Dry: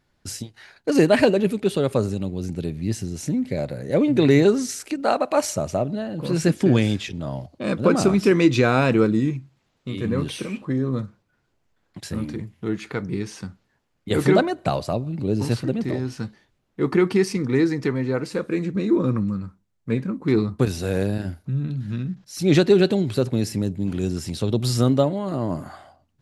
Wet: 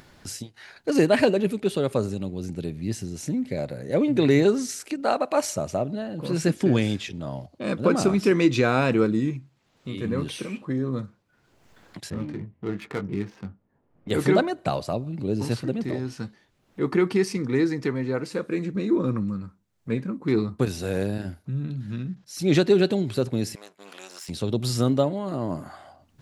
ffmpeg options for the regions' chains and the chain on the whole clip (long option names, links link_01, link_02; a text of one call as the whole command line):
ffmpeg -i in.wav -filter_complex "[0:a]asettb=1/sr,asplit=3[link_01][link_02][link_03];[link_01]atrim=end=12.104[link_04];[link_02]atrim=start=12.1:end=14.11,asetpts=PTS-STARTPTS,afade=type=in:duration=0.004:curve=qsin,afade=type=out:start_time=2.006:duration=0.004:curve=qsin,bandreject=frequency=1500:width=24,asplit=2[link_05][link_06];[link_06]adelay=20,volume=-7dB[link_07];[link_05][link_07]amix=inputs=2:normalize=0,atrim=end_sample=88641,adynamicsmooth=sensitivity=8:basefreq=930[link_08];[link_03]atrim=start=14.106[link_09];[link_04][link_08]acrossfade=duration=0.004:curve1=hsin:curve2=qsin[link_10];[link_10][link_09]acrossfade=duration=0.004:curve1=qsin:curve2=hsin,asettb=1/sr,asplit=3[link_11][link_12][link_13];[link_11]atrim=end=23.554[link_14];[link_12]atrim=start=23.55:end=24.29,asetpts=PTS-STARTPTS,afade=type=in:duration=0.004:curve=qsin,afade=type=out:start_time=0.736:duration=0.004:curve=qsin,aeval=exprs='if(lt(val(0),0),0.251*val(0),val(0))':channel_layout=same,highpass=1000,agate=range=-33dB:threshold=-57dB:ratio=3:release=100:detection=peak[link_15];[link_13]atrim=start=24.286[link_16];[link_14][link_15]acrossfade=duration=0.004:curve1=hsin:curve2=qsin[link_17];[link_17][link_16]acrossfade=duration=0.004:curve1=qsin:curve2=hsin,lowshelf=frequency=71:gain=-7.5,acompressor=mode=upward:threshold=-34dB:ratio=2.5,volume=-2.5dB" out.wav